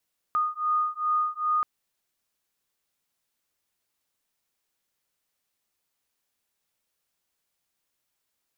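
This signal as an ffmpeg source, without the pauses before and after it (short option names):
-f lavfi -i "aevalsrc='0.0473*(sin(2*PI*1230*t)+sin(2*PI*1232.5*t))':d=1.28:s=44100"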